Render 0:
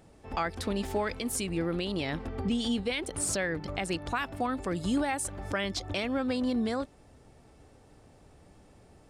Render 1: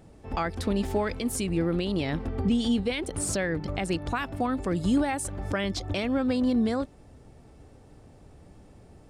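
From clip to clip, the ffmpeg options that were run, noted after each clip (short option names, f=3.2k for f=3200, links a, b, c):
-af "lowshelf=f=470:g=6.5"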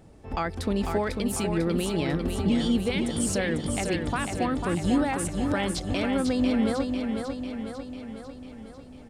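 -af "aecho=1:1:497|994|1491|1988|2485|2982|3479|3976:0.531|0.308|0.179|0.104|0.0601|0.0348|0.0202|0.0117"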